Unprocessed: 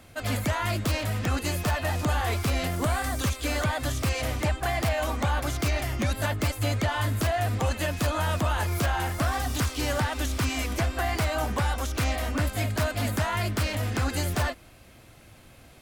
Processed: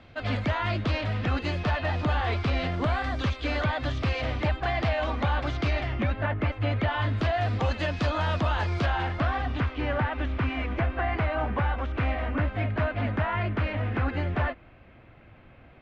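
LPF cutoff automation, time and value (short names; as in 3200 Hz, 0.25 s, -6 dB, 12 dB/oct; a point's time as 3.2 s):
LPF 24 dB/oct
5.77 s 4000 Hz
6.27 s 2400 Hz
7.5 s 4600 Hz
8.69 s 4600 Hz
9.75 s 2600 Hz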